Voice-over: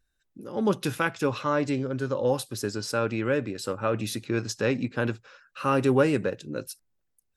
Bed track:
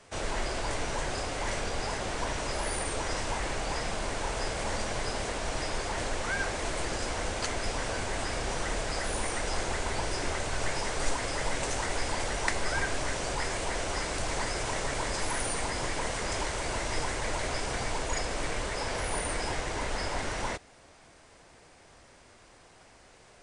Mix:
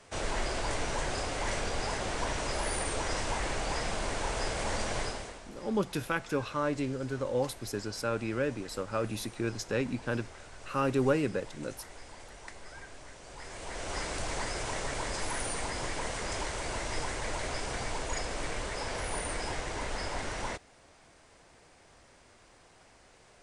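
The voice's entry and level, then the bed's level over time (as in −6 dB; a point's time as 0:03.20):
5.10 s, −5.5 dB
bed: 0:05.02 −0.5 dB
0:05.49 −17.5 dB
0:13.22 −17.5 dB
0:13.97 −3 dB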